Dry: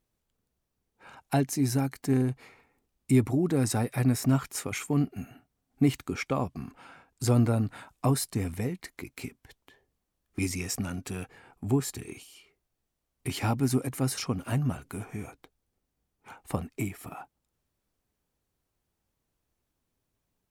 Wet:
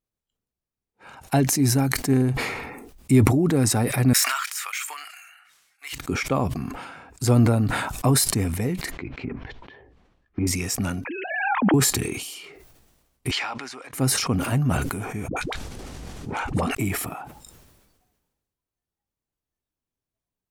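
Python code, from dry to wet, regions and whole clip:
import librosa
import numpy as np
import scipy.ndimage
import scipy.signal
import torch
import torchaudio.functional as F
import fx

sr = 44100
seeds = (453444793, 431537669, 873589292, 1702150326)

y = fx.chain(x, sr, fx.highpass(hz=1300.0, slope=24),
    fx.resample_linear(factor=2), at=(4.13, 5.93))
y = fx.chain(y, sr, fx.env_lowpass_down(base_hz=1100.0, full_db=-33.5),
    fx.lowpass(hz=3000.0, slope=12), at=(8.91, 10.47))
y = fx.chain(y, sr, fx.sine_speech(),
    fx.pre_swell(db_per_s=31.0), at=(11.05, 11.74))
y = fx.chain(y, sr, fx.highpass(hz=1100.0, slope=12),
    fx.air_absorb(metres=140.0), at=(13.31, 13.93))
y = fx.chain(y, sr, fx.lowpass(hz=7700.0, slope=12),
    fx.dispersion(late='highs', ms=86.0, hz=460.0),
    fx.env_flatten(amount_pct=70), at=(15.28, 16.75))
y = fx.noise_reduce_blind(y, sr, reduce_db=15)
y = fx.sustainer(y, sr, db_per_s=39.0)
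y = y * 10.0 ** (5.0 / 20.0)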